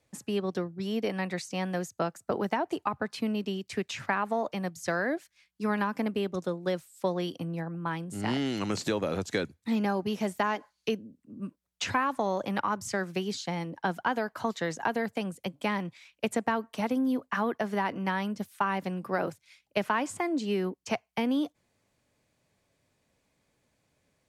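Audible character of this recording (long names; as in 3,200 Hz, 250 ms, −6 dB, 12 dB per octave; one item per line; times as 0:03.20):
background noise floor −76 dBFS
spectral slope −5.0 dB per octave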